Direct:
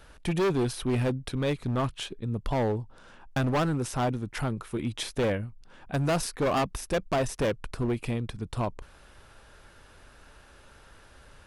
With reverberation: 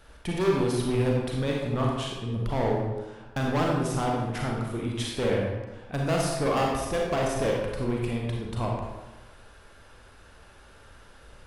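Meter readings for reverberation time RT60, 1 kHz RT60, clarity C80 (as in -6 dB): 1.2 s, 1.2 s, 3.0 dB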